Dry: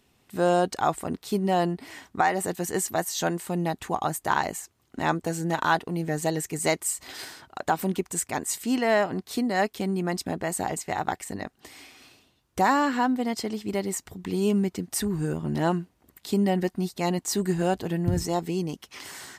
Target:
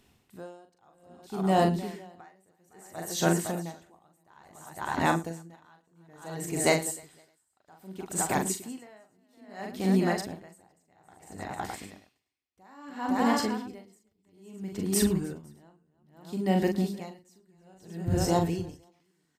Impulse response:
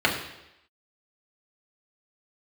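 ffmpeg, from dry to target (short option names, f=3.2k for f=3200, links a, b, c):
-filter_complex "[0:a]lowshelf=f=180:g=4,asplit=2[a][b];[b]aecho=0:1:42|111|308|511|566|613:0.562|0.119|0.178|0.376|0.106|0.251[c];[a][c]amix=inputs=2:normalize=0,aeval=exprs='val(0)*pow(10,-39*(0.5-0.5*cos(2*PI*0.6*n/s))/20)':c=same"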